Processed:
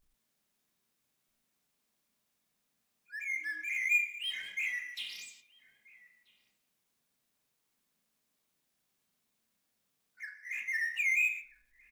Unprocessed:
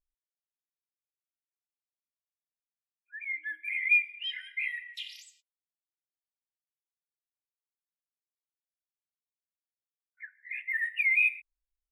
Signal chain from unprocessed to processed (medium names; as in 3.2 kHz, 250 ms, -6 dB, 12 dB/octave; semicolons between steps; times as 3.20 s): 4.23–5.02 s: frequency shift +36 Hz; power-law waveshaper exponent 0.7; echo from a far wall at 220 m, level -17 dB; on a send at -5 dB: reverberation RT60 0.45 s, pre-delay 28 ms; on the sum: trim -7 dB